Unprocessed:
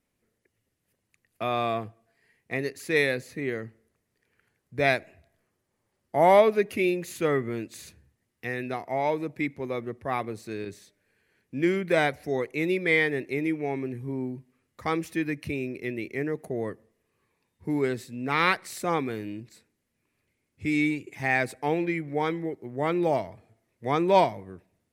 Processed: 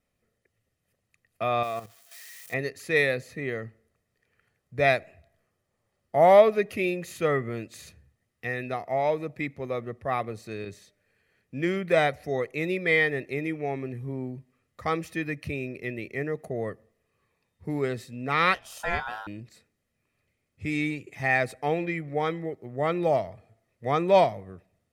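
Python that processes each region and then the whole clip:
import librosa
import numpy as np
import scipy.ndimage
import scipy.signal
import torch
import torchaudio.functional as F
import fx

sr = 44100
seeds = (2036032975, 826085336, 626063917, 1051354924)

y = fx.chain(x, sr, fx.crossing_spikes(level_db=-32.0),
    fx.low_shelf(hz=310.0, db=-6.5),
    fx.level_steps(step_db=11), at=(1.63, 2.54))
y = fx.chain(y, sr, fx.doubler(ms=24.0, db=-12.0),
    fx.ring_mod(carrier_hz=1200.0), at=(18.54, 19.27))
y = fx.high_shelf(y, sr, hz=6700.0, db=-5.0)
y = y + 0.4 * np.pad(y, (int(1.6 * sr / 1000.0), 0))[:len(y)]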